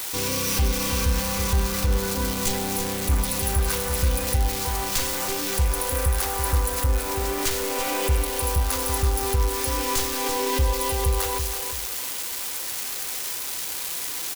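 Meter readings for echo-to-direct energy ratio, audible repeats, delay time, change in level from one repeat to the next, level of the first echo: -7.5 dB, 2, 332 ms, -9.5 dB, -8.0 dB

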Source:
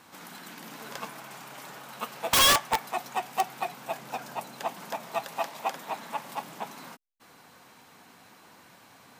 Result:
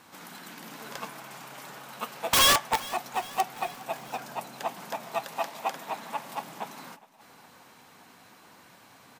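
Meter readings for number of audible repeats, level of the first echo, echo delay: 3, -20.5 dB, 410 ms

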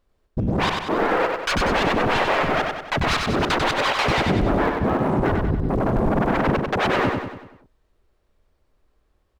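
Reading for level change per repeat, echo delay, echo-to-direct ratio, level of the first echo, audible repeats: -6.0 dB, 95 ms, -3.0 dB, -4.0 dB, 6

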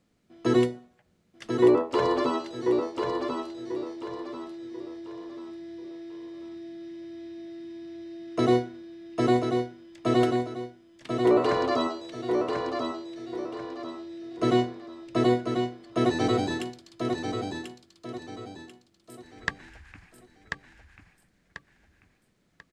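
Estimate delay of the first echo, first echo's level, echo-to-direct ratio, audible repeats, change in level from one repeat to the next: 1040 ms, -5.0 dB, -4.5 dB, 4, -9.0 dB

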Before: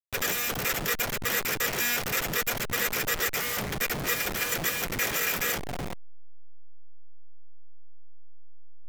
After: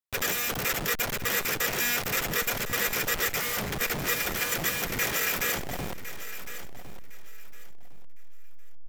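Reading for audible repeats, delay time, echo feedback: 2, 1058 ms, 24%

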